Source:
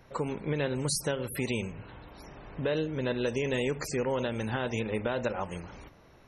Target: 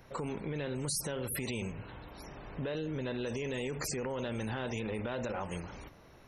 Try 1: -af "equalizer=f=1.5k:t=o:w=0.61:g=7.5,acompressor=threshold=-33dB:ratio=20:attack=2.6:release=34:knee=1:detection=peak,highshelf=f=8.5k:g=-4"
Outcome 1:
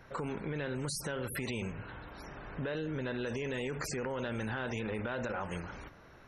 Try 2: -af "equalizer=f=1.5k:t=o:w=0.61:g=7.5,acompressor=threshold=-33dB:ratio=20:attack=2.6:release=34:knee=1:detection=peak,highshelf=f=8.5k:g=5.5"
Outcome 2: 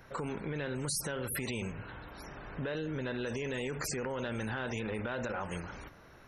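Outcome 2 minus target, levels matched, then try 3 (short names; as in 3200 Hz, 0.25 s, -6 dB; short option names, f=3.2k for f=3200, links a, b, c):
2000 Hz band +3.5 dB
-af "acompressor=threshold=-33dB:ratio=20:attack=2.6:release=34:knee=1:detection=peak,highshelf=f=8.5k:g=5.5"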